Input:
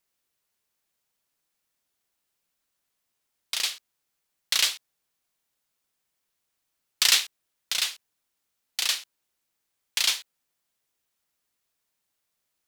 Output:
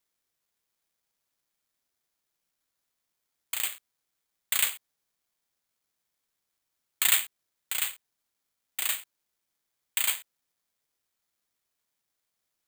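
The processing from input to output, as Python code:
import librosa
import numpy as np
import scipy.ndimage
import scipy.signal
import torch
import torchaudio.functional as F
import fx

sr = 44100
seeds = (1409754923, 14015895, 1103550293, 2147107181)

y = (np.kron(scipy.signal.resample_poly(x, 1, 8), np.eye(8)[0]) * 8)[:len(x)]
y = y * librosa.db_to_amplitude(-2.5)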